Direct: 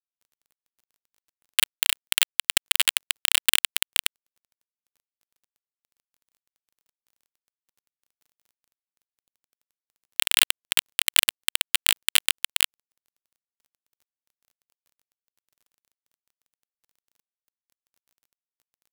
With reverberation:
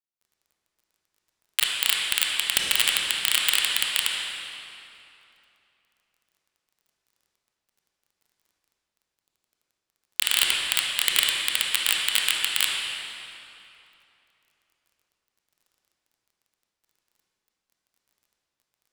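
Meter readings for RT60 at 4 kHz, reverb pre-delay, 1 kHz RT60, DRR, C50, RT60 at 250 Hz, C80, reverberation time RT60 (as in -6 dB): 2.2 s, 22 ms, 2.9 s, -2.0 dB, -1.0 dB, 3.0 s, 0.5 dB, 2.9 s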